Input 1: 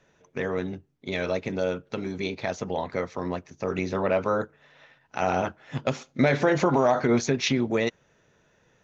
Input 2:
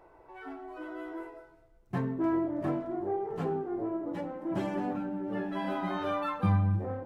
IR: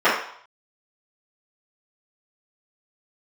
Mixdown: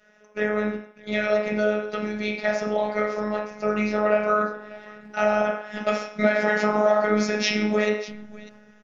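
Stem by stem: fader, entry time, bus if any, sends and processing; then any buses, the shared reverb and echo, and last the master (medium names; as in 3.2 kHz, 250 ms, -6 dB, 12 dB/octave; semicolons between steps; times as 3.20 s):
-1.0 dB, 0.00 s, send -12 dB, echo send -14 dB, none
-6.5 dB, 1.65 s, no send, echo send -14 dB, local Wiener filter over 41 samples; saturation -27 dBFS, distortion -12 dB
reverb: on, RT60 0.60 s, pre-delay 3 ms
echo: delay 599 ms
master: graphic EQ with 31 bands 400 Hz -11 dB, 1 kHz -10 dB, 5 kHz +7 dB; robot voice 211 Hz; compression 2.5:1, threshold -17 dBFS, peak gain reduction 6 dB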